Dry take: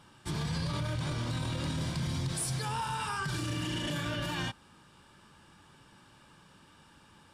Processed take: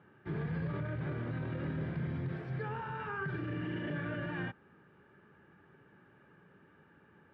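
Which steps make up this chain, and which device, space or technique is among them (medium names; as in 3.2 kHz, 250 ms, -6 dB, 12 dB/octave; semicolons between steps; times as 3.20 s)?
bass cabinet (cabinet simulation 89–2100 Hz, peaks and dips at 170 Hz +3 dB, 410 Hz +10 dB, 1 kHz -8 dB, 1.7 kHz +4 dB); trim -3.5 dB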